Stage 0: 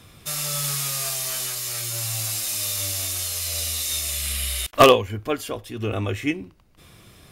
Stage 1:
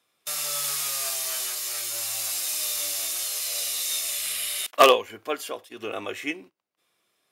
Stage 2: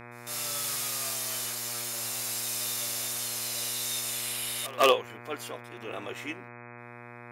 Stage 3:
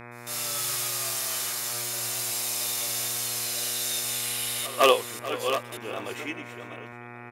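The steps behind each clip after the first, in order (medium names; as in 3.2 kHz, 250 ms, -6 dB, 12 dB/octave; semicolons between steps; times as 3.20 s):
gate -37 dBFS, range -18 dB; high-pass 440 Hz 12 dB/octave; trim -1.5 dB
reverse echo 152 ms -23.5 dB; transient shaper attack -6 dB, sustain -2 dB; mains buzz 120 Hz, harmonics 21, -42 dBFS -2 dB/octave; trim -4 dB
chunks repeated in reverse 577 ms, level -8.5 dB; delay 436 ms -15.5 dB; trim +2.5 dB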